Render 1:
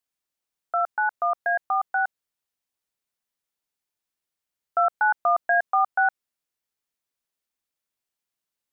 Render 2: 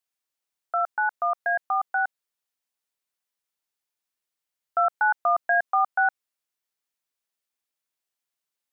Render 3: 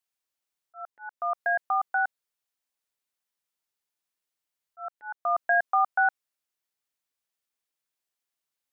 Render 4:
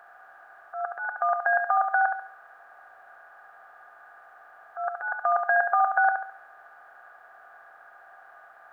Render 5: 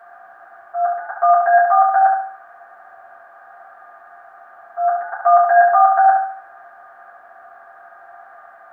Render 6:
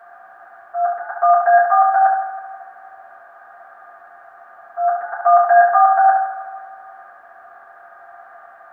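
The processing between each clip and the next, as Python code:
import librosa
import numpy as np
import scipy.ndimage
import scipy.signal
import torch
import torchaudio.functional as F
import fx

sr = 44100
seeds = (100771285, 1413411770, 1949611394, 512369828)

y1 = fx.low_shelf(x, sr, hz=320.0, db=-8.0)
y2 = fx.auto_swell(y1, sr, attack_ms=416.0)
y2 = y2 * librosa.db_to_amplitude(-1.0)
y3 = fx.bin_compress(y2, sr, power=0.4)
y3 = fx.echo_feedback(y3, sr, ms=70, feedback_pct=42, wet_db=-6.0)
y4 = fx.rev_fdn(y3, sr, rt60_s=0.31, lf_ratio=1.1, hf_ratio=0.35, size_ms=26.0, drr_db=-6.5)
y4 = y4 * librosa.db_to_amplitude(-1.0)
y5 = fx.echo_feedback(y4, sr, ms=161, feedback_pct=54, wet_db=-12)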